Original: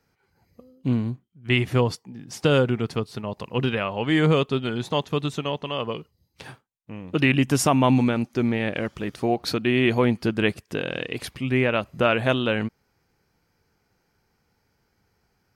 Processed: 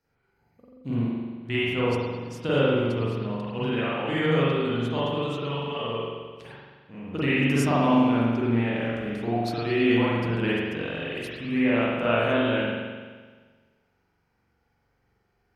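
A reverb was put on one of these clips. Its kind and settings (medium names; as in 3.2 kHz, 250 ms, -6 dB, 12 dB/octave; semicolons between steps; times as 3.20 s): spring tank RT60 1.5 s, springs 43 ms, chirp 70 ms, DRR -9 dB; trim -11 dB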